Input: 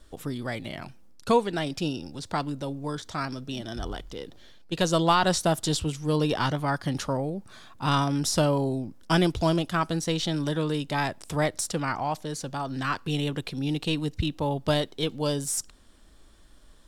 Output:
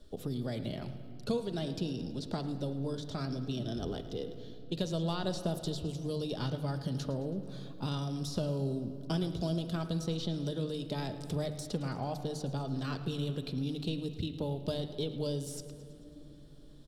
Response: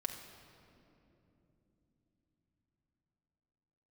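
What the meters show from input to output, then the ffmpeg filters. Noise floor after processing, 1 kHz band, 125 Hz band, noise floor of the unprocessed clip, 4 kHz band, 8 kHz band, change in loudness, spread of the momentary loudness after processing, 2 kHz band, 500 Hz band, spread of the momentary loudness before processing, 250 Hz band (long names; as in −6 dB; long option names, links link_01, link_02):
−50 dBFS, −16.0 dB, −5.0 dB, −52 dBFS, −10.0 dB, −15.5 dB, −8.5 dB, 8 LU, −17.0 dB, −8.5 dB, 11 LU, −7.0 dB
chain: -filter_complex "[0:a]equalizer=frequency=125:width_type=o:width=1:gain=7,equalizer=frequency=500:width_type=o:width=1:gain=3,equalizer=frequency=1000:width_type=o:width=1:gain=-10,equalizer=frequency=2000:width_type=o:width=1:gain=-10,equalizer=frequency=4000:width_type=o:width=1:gain=8,equalizer=frequency=8000:width_type=o:width=1:gain=-5,acrossover=split=100|3700[link_01][link_02][link_03];[link_01]acompressor=threshold=-42dB:ratio=4[link_04];[link_02]acompressor=threshold=-32dB:ratio=4[link_05];[link_03]acompressor=threshold=-40dB:ratio=4[link_06];[link_04][link_05][link_06]amix=inputs=3:normalize=0,bandreject=frequency=50:width_type=h:width=6,bandreject=frequency=100:width_type=h:width=6,bandreject=frequency=150:width_type=h:width=6,aecho=1:1:109|218|327|436|545|654:0.158|0.0919|0.0533|0.0309|0.0179|0.0104,asplit=2[link_07][link_08];[1:a]atrim=start_sample=2205,lowpass=2300,lowshelf=frequency=180:gain=-9[link_09];[link_08][link_09]afir=irnorm=-1:irlink=0,volume=1.5dB[link_10];[link_07][link_10]amix=inputs=2:normalize=0,volume=-5.5dB"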